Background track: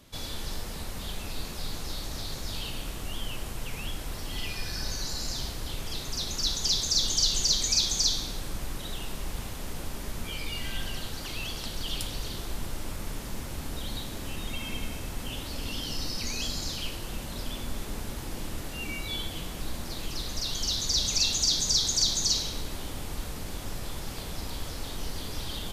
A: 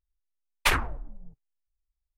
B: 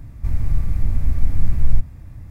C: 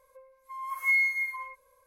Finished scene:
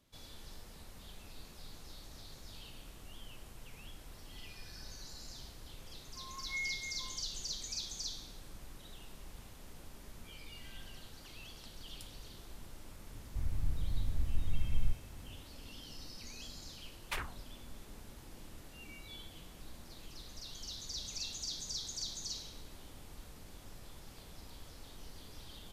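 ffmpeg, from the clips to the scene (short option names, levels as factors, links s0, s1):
-filter_complex "[0:a]volume=0.158[s0];[3:a]acrossover=split=3900[s1][s2];[s2]acompressor=threshold=0.002:ratio=4:attack=1:release=60[s3];[s1][s3]amix=inputs=2:normalize=0,atrim=end=1.86,asetpts=PTS-STARTPTS,volume=0.188,afade=t=in:d=0.004:c=hsin,afade=t=out:st=1.856:d=0.004:c=hsin,adelay=5660[s4];[2:a]atrim=end=2.3,asetpts=PTS-STARTPTS,volume=0.168,afade=t=in:d=0.004:c=hsin,afade=t=out:st=2.296:d=0.004:c=hsin,adelay=13120[s5];[1:a]atrim=end=2.17,asetpts=PTS-STARTPTS,volume=0.158,afade=t=in:d=0.004:c=hsin,afade=t=out:st=2.166:d=0.004:c=hsin,adelay=16460[s6];[s0][s4][s5][s6]amix=inputs=4:normalize=0"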